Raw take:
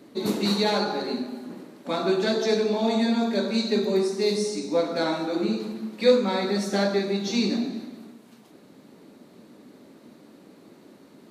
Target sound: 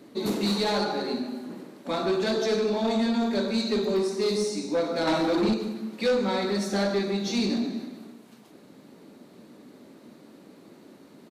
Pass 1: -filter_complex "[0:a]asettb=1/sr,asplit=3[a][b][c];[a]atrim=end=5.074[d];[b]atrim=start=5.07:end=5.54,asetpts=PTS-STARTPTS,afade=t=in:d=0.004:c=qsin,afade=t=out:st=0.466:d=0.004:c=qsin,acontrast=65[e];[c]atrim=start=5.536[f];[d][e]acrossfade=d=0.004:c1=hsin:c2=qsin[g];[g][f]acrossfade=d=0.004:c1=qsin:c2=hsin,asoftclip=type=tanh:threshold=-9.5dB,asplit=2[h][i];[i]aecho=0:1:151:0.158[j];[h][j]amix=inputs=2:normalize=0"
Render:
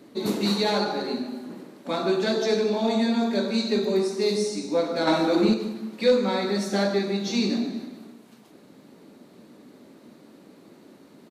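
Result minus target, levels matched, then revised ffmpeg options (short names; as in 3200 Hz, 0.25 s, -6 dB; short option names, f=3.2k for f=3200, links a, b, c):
soft clip: distortion -12 dB
-filter_complex "[0:a]asettb=1/sr,asplit=3[a][b][c];[a]atrim=end=5.074[d];[b]atrim=start=5.07:end=5.54,asetpts=PTS-STARTPTS,afade=t=in:d=0.004:c=qsin,afade=t=out:st=0.466:d=0.004:c=qsin,acontrast=65[e];[c]atrim=start=5.536[f];[d][e]acrossfade=d=0.004:c1=hsin:c2=qsin[g];[g][f]acrossfade=d=0.004:c1=qsin:c2=hsin,asoftclip=type=tanh:threshold=-19dB,asplit=2[h][i];[i]aecho=0:1:151:0.158[j];[h][j]amix=inputs=2:normalize=0"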